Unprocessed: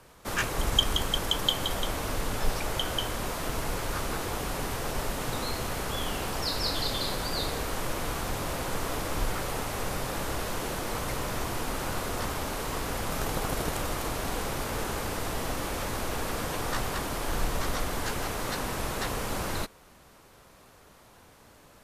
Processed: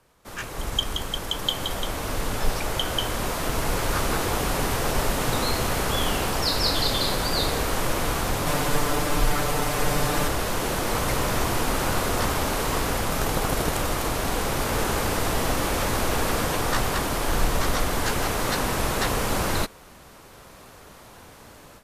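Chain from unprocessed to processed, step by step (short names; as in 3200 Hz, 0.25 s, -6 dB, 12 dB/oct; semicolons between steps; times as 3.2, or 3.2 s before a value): 8.46–10.28 comb 6.8 ms, depth 94%; AGC gain up to 16 dB; gain -7.5 dB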